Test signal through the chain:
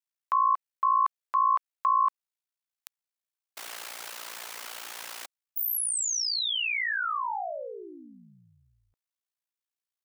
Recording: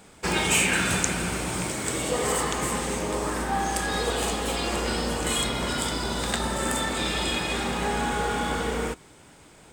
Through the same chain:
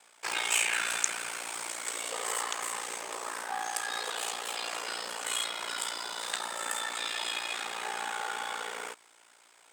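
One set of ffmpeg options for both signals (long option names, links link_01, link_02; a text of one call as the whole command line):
ffmpeg -i in.wav -af "highpass=820,aeval=exprs='val(0)*sin(2*PI*29*n/s)':channel_layout=same,volume=-2dB" out.wav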